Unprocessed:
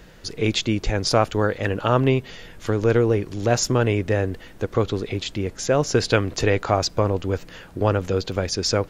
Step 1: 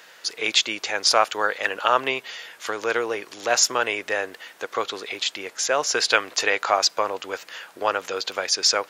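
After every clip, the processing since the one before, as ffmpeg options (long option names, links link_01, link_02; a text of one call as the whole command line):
ffmpeg -i in.wav -af "highpass=890,volume=5.5dB" out.wav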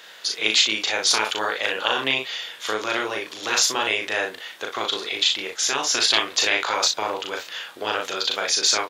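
ffmpeg -i in.wav -filter_complex "[0:a]afftfilt=real='re*lt(hypot(re,im),0.398)':imag='im*lt(hypot(re,im),0.398)':win_size=1024:overlap=0.75,equalizer=frequency=3500:width=2.7:gain=8,asplit=2[link_01][link_02];[link_02]aecho=0:1:37|60:0.708|0.316[link_03];[link_01][link_03]amix=inputs=2:normalize=0" out.wav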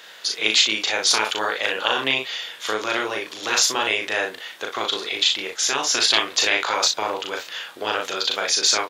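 ffmpeg -i in.wav -af "equalizer=frequency=76:width=1.5:gain=-2,volume=1dB" out.wav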